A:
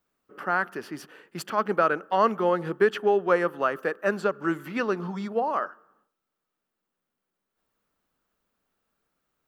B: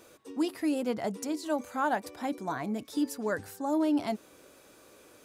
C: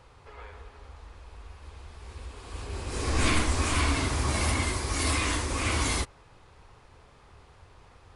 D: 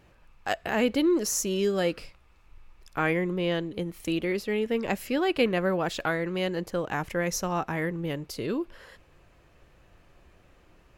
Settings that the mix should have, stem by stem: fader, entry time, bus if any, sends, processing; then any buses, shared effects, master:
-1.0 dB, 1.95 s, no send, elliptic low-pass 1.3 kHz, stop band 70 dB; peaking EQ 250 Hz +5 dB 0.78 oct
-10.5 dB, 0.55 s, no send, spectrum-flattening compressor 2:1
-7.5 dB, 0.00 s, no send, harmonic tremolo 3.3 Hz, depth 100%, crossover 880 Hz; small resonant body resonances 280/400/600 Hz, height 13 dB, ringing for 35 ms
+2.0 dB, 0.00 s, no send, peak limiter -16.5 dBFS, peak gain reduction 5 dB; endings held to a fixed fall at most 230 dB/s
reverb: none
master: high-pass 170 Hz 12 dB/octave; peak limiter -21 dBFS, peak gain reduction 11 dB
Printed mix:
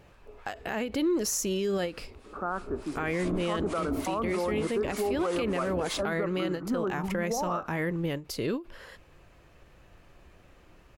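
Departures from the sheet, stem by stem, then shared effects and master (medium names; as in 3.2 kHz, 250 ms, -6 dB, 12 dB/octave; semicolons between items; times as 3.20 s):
stem B: muted; master: missing high-pass 170 Hz 12 dB/octave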